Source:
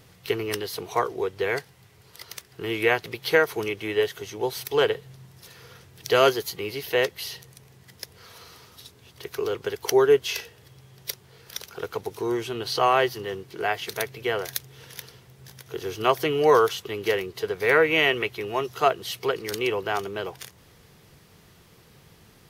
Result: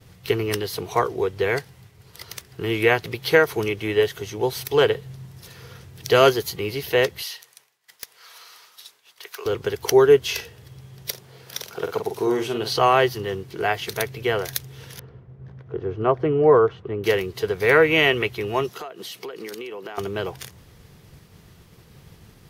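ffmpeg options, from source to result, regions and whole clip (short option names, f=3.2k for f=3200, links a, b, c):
-filter_complex "[0:a]asettb=1/sr,asplit=3[a][b][c];[a]atrim=end=7.224[d];[b]atrim=start=7.22:end=9.46,asetpts=PTS-STARTPTS,afade=t=in:d=0.004:c=qsin,afade=t=out:st=2.236:d=0.004:c=qsin,highpass=950,aeval=exprs='(mod(11.9*val(0)+1,2)-1)/11.9':c=same[e];[c]atrim=start=9.456[f];[d][e]acrossfade=d=0.004:c1=hsin:c2=qsin[g];[g][f]acrossfade=d=0.004:c1=qsin:c2=hsin,asettb=1/sr,asplit=3[h][i][j];[h]atrim=end=11.104[k];[i]atrim=start=11.1:end=12.73,asetpts=PTS-STARTPTS,afade=t=in:d=0.004:c=qsin,afade=t=out:st=1.626:d=0.004:c=qsin,highpass=150,equalizer=f=660:t=o:w=0.74:g=3.5,asplit=2[l][m];[m]adelay=46,volume=-7dB[n];[l][n]amix=inputs=2:normalize=0,atrim=end_sample=71883[o];[j]atrim=start=12.726[p];[k][o]acrossfade=d=0.004:c1=hsin:c2=qsin[q];[q][p]acrossfade=d=0.004:c1=qsin:c2=hsin,asettb=1/sr,asplit=3[r][s][t];[r]atrim=end=14.994[u];[s]atrim=start=14.99:end=17.04,asetpts=PTS-STARTPTS,afade=t=in:d=0.004:c=qsin,afade=t=out:st=2.046:d=0.004:c=qsin,lowpass=1.1k,equalizer=f=870:w=3.4:g=-3.5[v];[t]atrim=start=17.036[w];[u][v]acrossfade=d=0.004:c1=hsin:c2=qsin[x];[x][w]acrossfade=d=0.004:c1=qsin:c2=hsin,asettb=1/sr,asplit=3[y][z][aa];[y]atrim=end=18.694[ab];[z]atrim=start=18.69:end=19.98,asetpts=PTS-STARTPTS,afade=t=in:d=0.004:c=qsin,afade=t=out:st=1.286:d=0.004:c=qsin,highpass=f=190:w=0.5412,highpass=f=190:w=1.3066,acompressor=threshold=-34dB:ratio=16:attack=3.2:release=140:knee=1:detection=peak[ac];[aa]atrim=start=19.976[ad];[ab][ac]acrossfade=d=0.004:c1=hsin:c2=qsin[ae];[ae][ad]acrossfade=d=0.004:c1=qsin:c2=hsin,agate=range=-33dB:threshold=-51dB:ratio=3:detection=peak,lowshelf=f=190:g=8.5,volume=2.5dB"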